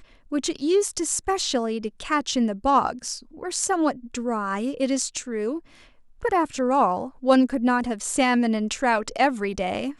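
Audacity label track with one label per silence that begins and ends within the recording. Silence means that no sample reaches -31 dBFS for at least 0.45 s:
5.590000	6.230000	silence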